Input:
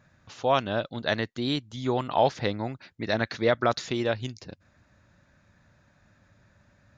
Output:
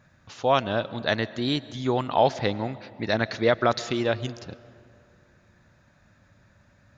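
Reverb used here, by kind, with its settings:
comb and all-pass reverb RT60 2.4 s, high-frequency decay 0.55×, pre-delay 85 ms, DRR 17.5 dB
level +2 dB

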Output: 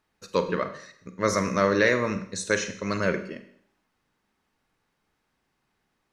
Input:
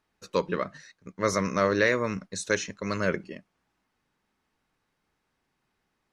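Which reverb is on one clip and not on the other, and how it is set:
four-comb reverb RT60 0.63 s, combs from 33 ms, DRR 9 dB
level +1.5 dB

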